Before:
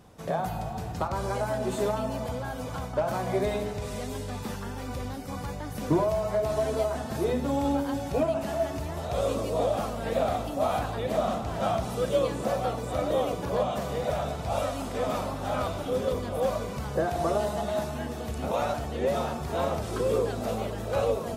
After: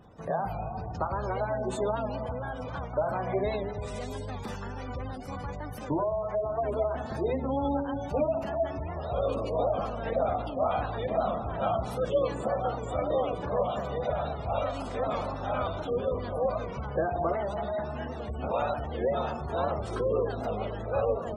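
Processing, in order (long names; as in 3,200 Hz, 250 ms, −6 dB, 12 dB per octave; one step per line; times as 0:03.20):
0:17.32–0:18.34: hard clipping −26.5 dBFS, distortion −25 dB
dynamic equaliser 210 Hz, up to −4 dB, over −42 dBFS, Q 0.76
gate on every frequency bin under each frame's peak −25 dB strong
0:05.75–0:06.64: low-shelf EQ 500 Hz −5 dB
wow of a warped record 78 rpm, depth 100 cents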